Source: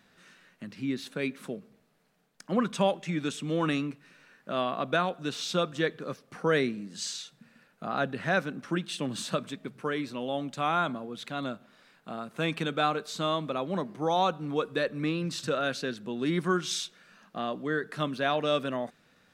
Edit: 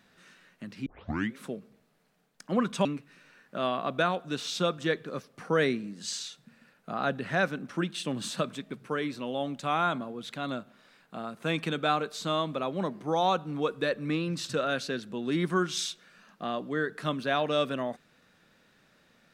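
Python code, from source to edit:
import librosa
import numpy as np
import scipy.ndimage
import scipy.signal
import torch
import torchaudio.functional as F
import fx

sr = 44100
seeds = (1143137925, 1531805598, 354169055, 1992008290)

y = fx.edit(x, sr, fx.tape_start(start_s=0.86, length_s=0.5),
    fx.cut(start_s=2.85, length_s=0.94), tone=tone)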